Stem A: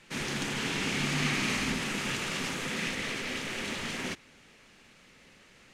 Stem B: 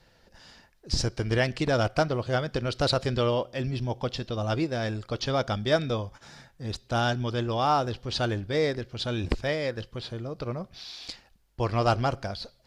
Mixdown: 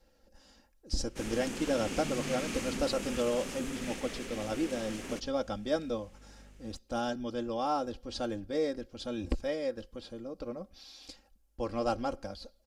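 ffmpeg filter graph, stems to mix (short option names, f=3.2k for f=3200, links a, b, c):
-filter_complex "[0:a]aeval=exprs='val(0)+0.00316*(sin(2*PI*50*n/s)+sin(2*PI*2*50*n/s)/2+sin(2*PI*3*50*n/s)/3+sin(2*PI*4*50*n/s)/4+sin(2*PI*5*50*n/s)/5)':c=same,adelay=1050,volume=-2dB[a];[1:a]aecho=1:1:3.7:0.67,volume=-4.5dB[b];[a][b]amix=inputs=2:normalize=0,equalizer=f=125:t=o:w=1:g=-9,equalizer=f=1k:t=o:w=1:g=-5,equalizer=f=2k:t=o:w=1:g=-8,equalizer=f=4k:t=o:w=1:g=-7"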